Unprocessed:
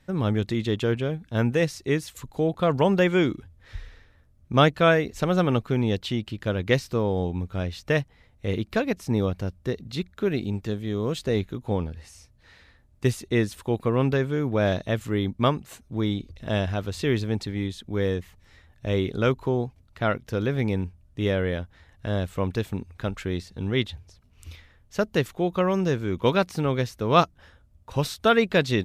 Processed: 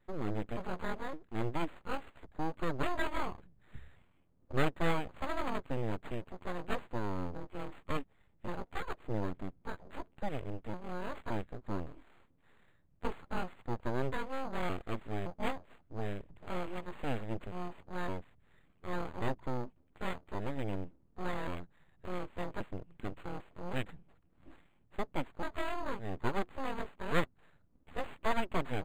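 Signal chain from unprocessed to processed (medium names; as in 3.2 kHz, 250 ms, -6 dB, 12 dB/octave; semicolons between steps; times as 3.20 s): pitch shift switched off and on +10 st, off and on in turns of 565 ms; full-wave rectifier; decimation joined by straight lines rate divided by 8×; trim -9 dB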